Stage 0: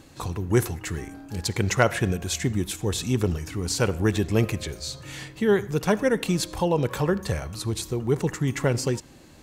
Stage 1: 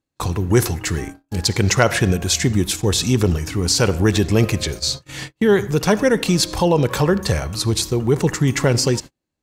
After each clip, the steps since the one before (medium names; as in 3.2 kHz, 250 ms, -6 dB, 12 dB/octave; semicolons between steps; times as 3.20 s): gate -37 dBFS, range -40 dB; dynamic bell 5 kHz, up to +6 dB, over -46 dBFS, Q 1.7; in parallel at +1.5 dB: peak limiter -17 dBFS, peak gain reduction 11.5 dB; on the sum: trim +1.5 dB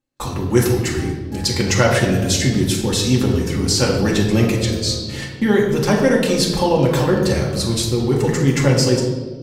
reverberation RT60 1.6 s, pre-delay 3 ms, DRR -2.5 dB; trim -4 dB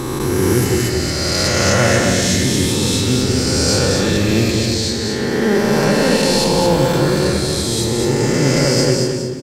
reverse spectral sustain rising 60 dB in 2.94 s; on a send: feedback delay 224 ms, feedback 29%, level -4 dB; on the sum: trim -4.5 dB